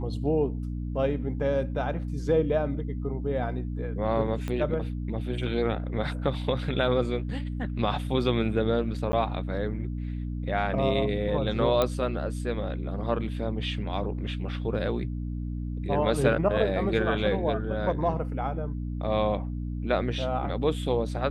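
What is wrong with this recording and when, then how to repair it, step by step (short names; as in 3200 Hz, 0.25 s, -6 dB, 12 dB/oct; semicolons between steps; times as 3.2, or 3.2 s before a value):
hum 60 Hz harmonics 5 -32 dBFS
4.48 pop -19 dBFS
9.12–9.13 gap 10 ms
11.82 pop -11 dBFS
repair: de-click; de-hum 60 Hz, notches 5; interpolate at 9.12, 10 ms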